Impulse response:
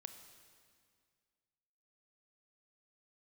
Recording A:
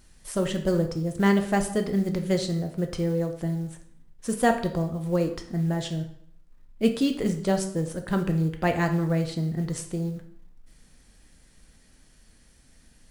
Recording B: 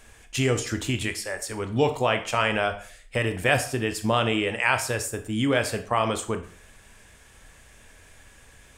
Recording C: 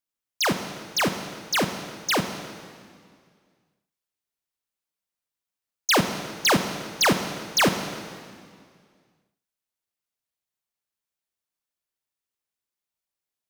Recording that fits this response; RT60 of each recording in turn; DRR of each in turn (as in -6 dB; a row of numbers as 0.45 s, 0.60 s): C; 0.65 s, 0.50 s, 2.0 s; 5.0 dB, 7.0 dB, 7.5 dB